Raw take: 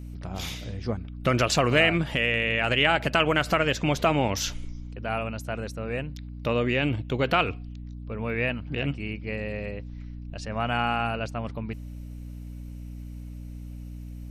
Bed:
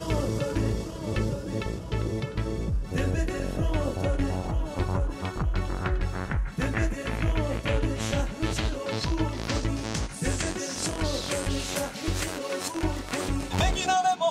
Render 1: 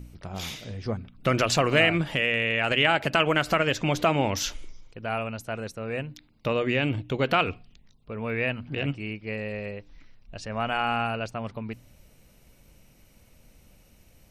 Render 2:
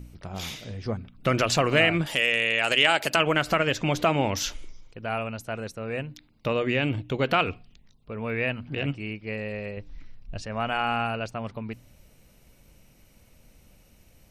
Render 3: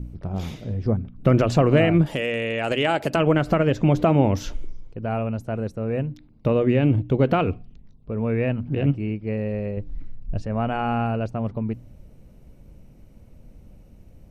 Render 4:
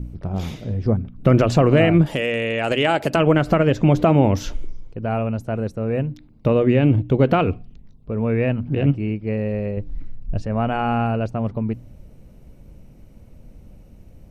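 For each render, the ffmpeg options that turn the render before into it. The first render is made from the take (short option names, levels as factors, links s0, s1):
-af "bandreject=f=60:t=h:w=4,bandreject=f=120:t=h:w=4,bandreject=f=180:t=h:w=4,bandreject=f=240:t=h:w=4,bandreject=f=300:t=h:w=4"
-filter_complex "[0:a]asettb=1/sr,asplit=3[s0][s1][s2];[s0]atrim=end=2.064[s3];[s1]atrim=start=2.06:end=3.16,asetpts=PTS-STARTPTS,afade=t=in:d=0.004:c=qsin,afade=t=out:st=1.096:d=0.004:c=qsin,bass=f=250:g=-9,treble=f=4000:g=14[s4];[s2]atrim=start=3.156[s5];[s3][s4]acrossfade=d=0.004:c1=hsin:c2=qsin[s6];[s6][s5]acrossfade=d=0.004:c1=qsin:c2=hsin,asettb=1/sr,asplit=3[s7][s8][s9];[s7]atrim=end=9.774[s10];[s8]atrim=start=9.77:end=10.42,asetpts=PTS-STARTPTS,afade=t=in:d=0.004:c=qsin,afade=t=out:st=0.646:d=0.004:c=qsin,lowshelf=f=200:g=9[s11];[s9]atrim=start=10.416[s12];[s10][s11]acrossfade=d=0.004:c1=hsin:c2=qsin[s13];[s13][s12]acrossfade=d=0.004:c1=qsin:c2=hsin"
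-af "tiltshelf=f=970:g=10"
-af "volume=1.41,alimiter=limit=0.708:level=0:latency=1"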